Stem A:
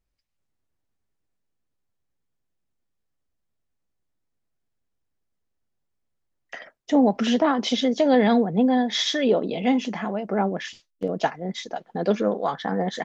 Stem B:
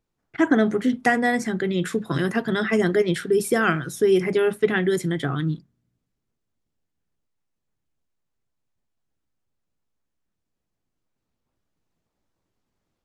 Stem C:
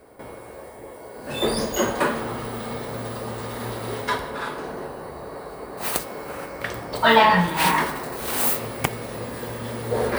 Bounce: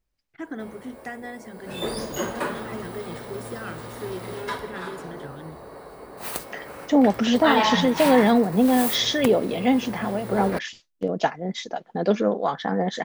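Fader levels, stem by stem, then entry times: +1.0, -16.0, -6.0 dB; 0.00, 0.00, 0.40 s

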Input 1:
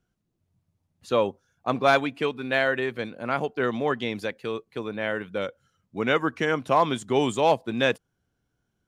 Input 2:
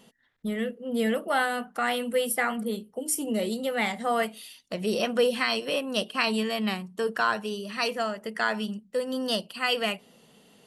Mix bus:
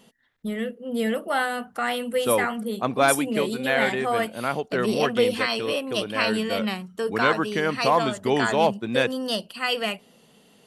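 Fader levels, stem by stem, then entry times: 0.0, +1.0 dB; 1.15, 0.00 s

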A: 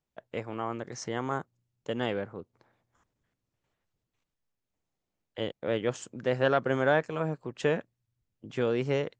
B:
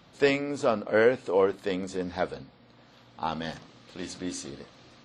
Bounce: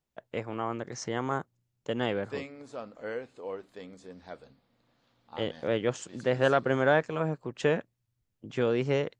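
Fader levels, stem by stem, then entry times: +1.0, -15.0 dB; 0.00, 2.10 s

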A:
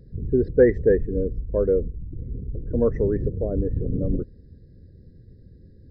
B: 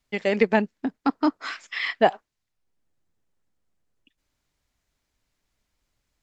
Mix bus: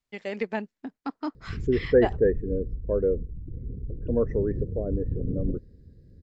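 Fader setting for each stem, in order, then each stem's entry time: -3.5, -10.0 dB; 1.35, 0.00 s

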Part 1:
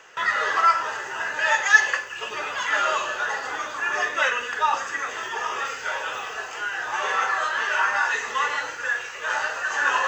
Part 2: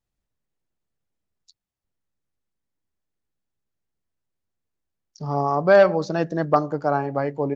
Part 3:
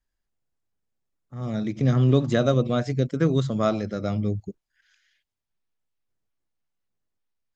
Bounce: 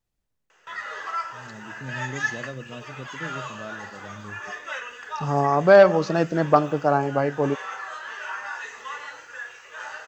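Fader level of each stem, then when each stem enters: -11.0, +1.5, -16.0 dB; 0.50, 0.00, 0.00 s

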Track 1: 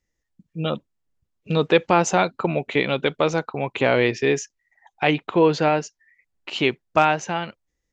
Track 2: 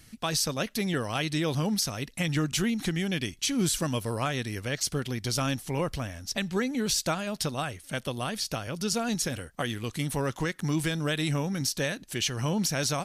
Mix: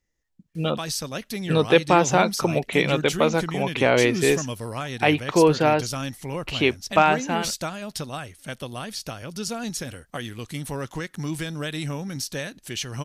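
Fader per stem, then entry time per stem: 0.0, -1.5 dB; 0.00, 0.55 s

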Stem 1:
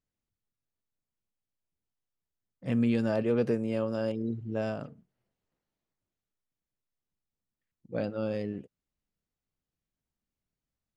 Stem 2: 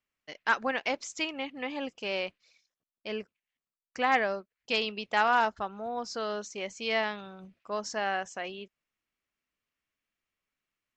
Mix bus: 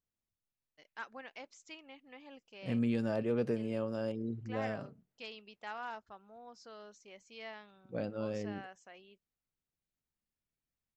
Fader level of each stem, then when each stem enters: -5.5, -18.0 dB; 0.00, 0.50 s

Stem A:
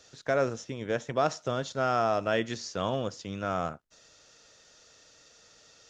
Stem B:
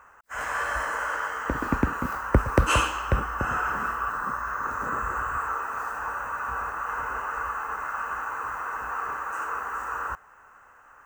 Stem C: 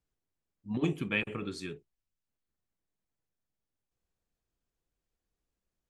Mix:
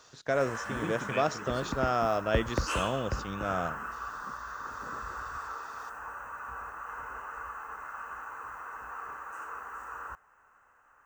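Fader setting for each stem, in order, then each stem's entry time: -1.5, -10.0, -7.0 dB; 0.00, 0.00, 0.00 s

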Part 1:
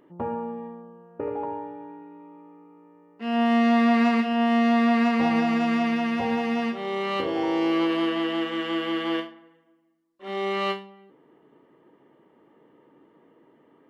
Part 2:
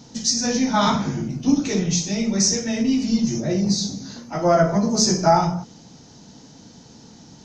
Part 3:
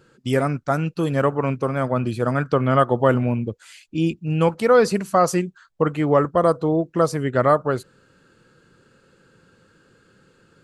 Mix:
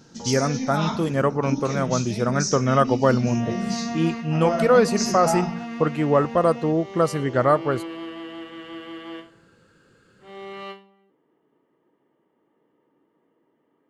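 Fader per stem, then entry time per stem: -10.0, -8.5, -1.5 dB; 0.00, 0.00, 0.00 s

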